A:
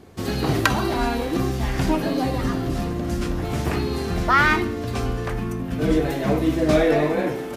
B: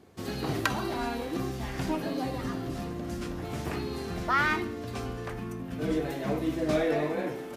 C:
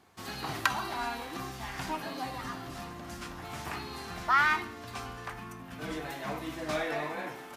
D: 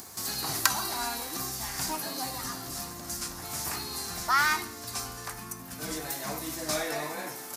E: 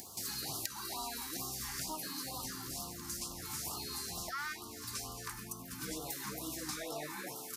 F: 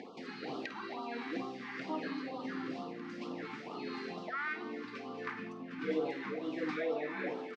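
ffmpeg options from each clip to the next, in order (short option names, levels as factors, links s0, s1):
-af "highpass=f=95:p=1,volume=0.376"
-af "lowshelf=f=660:t=q:w=1.5:g=-8.5"
-af "acompressor=mode=upward:threshold=0.00891:ratio=2.5,aexciter=amount=3.8:drive=8.2:freq=4400"
-af "acompressor=threshold=0.0251:ratio=8,afftfilt=real='re*(1-between(b*sr/1024,540*pow(2000/540,0.5+0.5*sin(2*PI*2.2*pts/sr))/1.41,540*pow(2000/540,0.5+0.5*sin(2*PI*2.2*pts/sr))*1.41))':imag='im*(1-between(b*sr/1024,540*pow(2000/540,0.5+0.5*sin(2*PI*2.2*pts/sr))/1.41,540*pow(2000/540,0.5+0.5*sin(2*PI*2.2*pts/sr))*1.41))':win_size=1024:overlap=0.75,volume=0.631"
-filter_complex "[0:a]asplit=2[s0][s1];[s1]aecho=0:1:51|191:0.251|0.112[s2];[s0][s2]amix=inputs=2:normalize=0,tremolo=f=1.5:d=0.34,highpass=f=180:w=0.5412,highpass=f=180:w=1.3066,equalizer=f=260:t=q:w=4:g=7,equalizer=f=470:t=q:w=4:g=10,equalizer=f=970:t=q:w=4:g=-4,equalizer=f=2100:t=q:w=4:g=4,lowpass=f=2900:w=0.5412,lowpass=f=2900:w=1.3066,volume=1.78"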